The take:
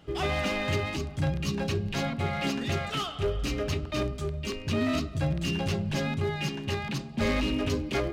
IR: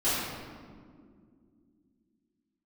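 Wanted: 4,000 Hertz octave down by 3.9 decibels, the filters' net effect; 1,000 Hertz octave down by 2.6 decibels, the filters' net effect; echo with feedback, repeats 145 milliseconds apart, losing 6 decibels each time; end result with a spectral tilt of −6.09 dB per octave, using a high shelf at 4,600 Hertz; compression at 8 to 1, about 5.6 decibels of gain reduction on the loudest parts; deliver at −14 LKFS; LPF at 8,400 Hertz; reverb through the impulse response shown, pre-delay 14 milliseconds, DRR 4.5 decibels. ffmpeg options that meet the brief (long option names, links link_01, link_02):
-filter_complex "[0:a]lowpass=8400,equalizer=frequency=1000:width_type=o:gain=-3.5,equalizer=frequency=4000:width_type=o:gain=-7,highshelf=frequency=4600:gain=3.5,acompressor=threshold=-29dB:ratio=8,aecho=1:1:145|290|435|580|725|870:0.501|0.251|0.125|0.0626|0.0313|0.0157,asplit=2[link_01][link_02];[1:a]atrim=start_sample=2205,adelay=14[link_03];[link_02][link_03]afir=irnorm=-1:irlink=0,volume=-16.5dB[link_04];[link_01][link_04]amix=inputs=2:normalize=0,volume=16dB"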